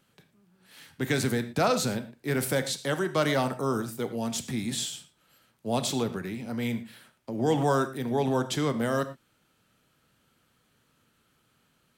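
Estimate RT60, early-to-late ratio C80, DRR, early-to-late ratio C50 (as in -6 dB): not exponential, 15.5 dB, 9.5 dB, 13.0 dB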